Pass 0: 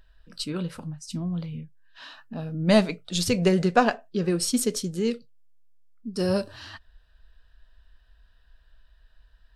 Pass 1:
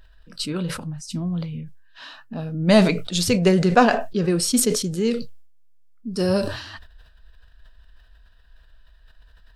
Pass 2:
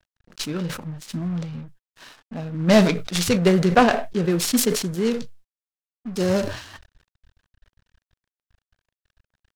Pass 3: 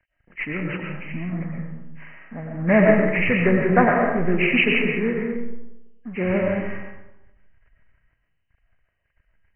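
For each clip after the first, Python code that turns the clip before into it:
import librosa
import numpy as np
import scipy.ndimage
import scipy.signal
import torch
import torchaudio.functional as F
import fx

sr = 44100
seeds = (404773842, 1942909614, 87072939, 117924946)

y1 = fx.sustainer(x, sr, db_per_s=71.0)
y1 = y1 * librosa.db_to_amplitude(3.5)
y2 = np.sign(y1) * np.maximum(np.abs(y1) - 10.0 ** (-44.5 / 20.0), 0.0)
y2 = fx.noise_mod_delay(y2, sr, seeds[0], noise_hz=1200.0, depth_ms=0.037)
y3 = fx.freq_compress(y2, sr, knee_hz=1600.0, ratio=4.0)
y3 = fx.rev_freeverb(y3, sr, rt60_s=0.97, hf_ratio=0.45, predelay_ms=70, drr_db=1.0)
y3 = y3 * librosa.db_to_amplitude(-2.5)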